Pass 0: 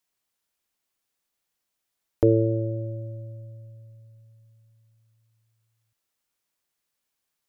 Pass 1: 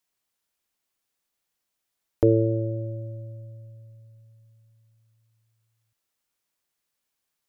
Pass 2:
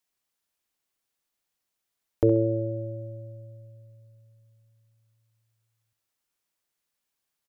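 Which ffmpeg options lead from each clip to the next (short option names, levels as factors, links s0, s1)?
-af anull
-af "aecho=1:1:66|132|198:0.251|0.0829|0.0274,volume=0.794"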